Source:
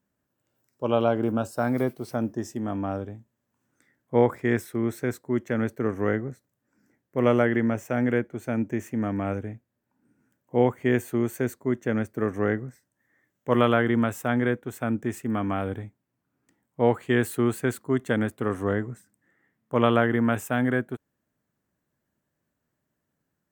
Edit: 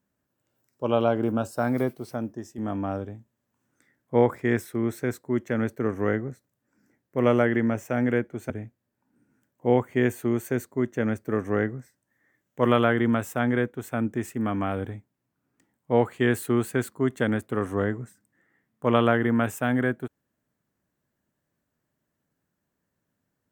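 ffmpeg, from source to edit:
ffmpeg -i in.wav -filter_complex "[0:a]asplit=3[link_01][link_02][link_03];[link_01]atrim=end=2.58,asetpts=PTS-STARTPTS,afade=type=out:start_time=1.8:duration=0.78:silence=0.354813[link_04];[link_02]atrim=start=2.58:end=8.502,asetpts=PTS-STARTPTS,afade=type=in:duration=0.004:curve=hsin:silence=0.354813[link_05];[link_03]atrim=start=9.388[link_06];[link_04][link_05]concat=n=2:v=0:a=1[link_07];[link_07][link_06]acrossfade=duration=0.004:curve1=hsin:curve2=hsin" out.wav

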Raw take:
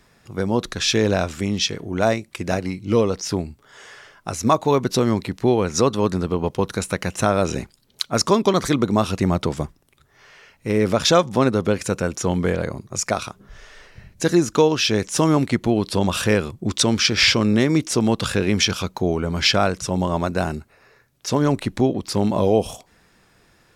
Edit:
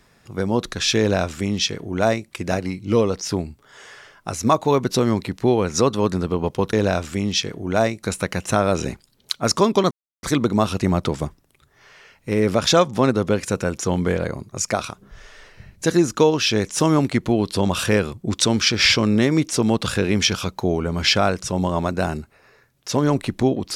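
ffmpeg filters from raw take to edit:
ffmpeg -i in.wav -filter_complex "[0:a]asplit=4[link_01][link_02][link_03][link_04];[link_01]atrim=end=6.732[link_05];[link_02]atrim=start=0.988:end=2.292[link_06];[link_03]atrim=start=6.728:end=8.61,asetpts=PTS-STARTPTS,afade=type=out:start_time=1.878:duration=0.004:curve=hsin,apad=pad_dur=0.32[link_07];[link_04]atrim=start=8.61,asetpts=PTS-STARTPTS,afade=type=in:duration=0.004:curve=hsin[link_08];[link_05][link_06]acrossfade=duration=0.004:curve1=hsin:curve2=hsin[link_09];[link_07][link_08]concat=n=2:v=0:a=1[link_10];[link_09][link_10]acrossfade=duration=0.004:curve1=hsin:curve2=hsin" out.wav

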